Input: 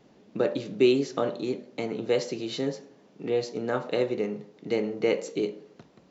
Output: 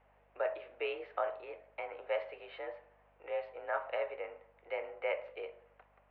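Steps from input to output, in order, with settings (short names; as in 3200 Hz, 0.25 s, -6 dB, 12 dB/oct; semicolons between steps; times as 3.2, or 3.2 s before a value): mistuned SSB +51 Hz 570–2500 Hz; hum 50 Hz, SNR 32 dB; gain -3.5 dB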